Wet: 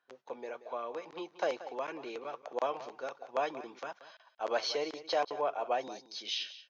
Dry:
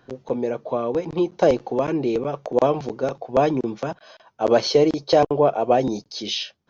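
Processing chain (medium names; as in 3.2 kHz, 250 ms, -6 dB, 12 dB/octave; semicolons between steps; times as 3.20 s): high-pass 1.3 kHz 12 dB/octave; gate -56 dBFS, range -11 dB; tilt EQ -3 dB/octave; delay 181 ms -15 dB; trim -3.5 dB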